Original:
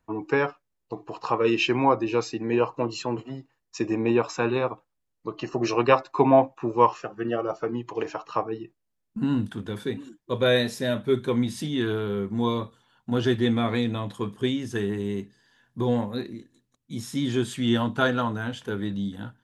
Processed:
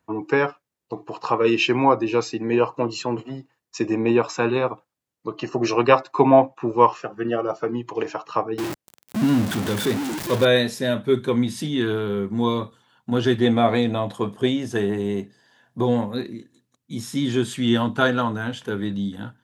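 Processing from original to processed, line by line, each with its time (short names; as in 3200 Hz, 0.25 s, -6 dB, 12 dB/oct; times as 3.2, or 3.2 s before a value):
6.42–7.12 high shelf 8700 Hz -6.5 dB
8.58–10.45 zero-crossing step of -25.5 dBFS
13.41–15.86 bell 660 Hz +9.5 dB 0.75 oct
whole clip: HPF 94 Hz; gain +3.5 dB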